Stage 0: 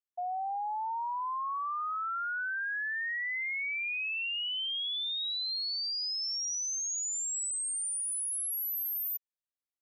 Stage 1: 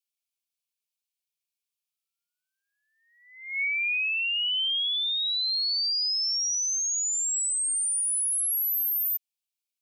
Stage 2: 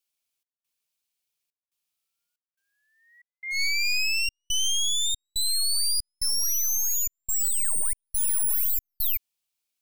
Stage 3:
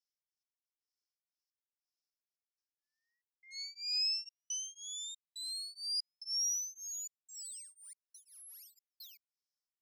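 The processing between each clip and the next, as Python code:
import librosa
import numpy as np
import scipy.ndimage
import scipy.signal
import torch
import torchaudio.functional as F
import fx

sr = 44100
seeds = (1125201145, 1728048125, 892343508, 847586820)

y1 = scipy.signal.sosfilt(scipy.signal.cheby1(10, 1.0, 2200.0, 'highpass', fs=sr, output='sos'), x)
y1 = F.gain(torch.from_numpy(y1), 7.5).numpy()
y2 = np.minimum(y1, 2.0 * 10.0 ** (-33.5 / 20.0) - y1)
y2 = fx.step_gate(y2, sr, bpm=70, pattern='xx.xxxx.xxx.x', floor_db=-60.0, edge_ms=4.5)
y2 = F.gain(torch.from_numpy(y2), 6.0).numpy()
y3 = fx.bandpass_q(y2, sr, hz=5300.0, q=7.7)
y3 = y3 * np.abs(np.cos(np.pi * 2.0 * np.arange(len(y3)) / sr))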